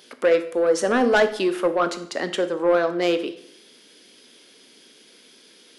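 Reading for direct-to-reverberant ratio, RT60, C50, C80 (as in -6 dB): 9.5 dB, 0.65 s, 13.0 dB, 16.0 dB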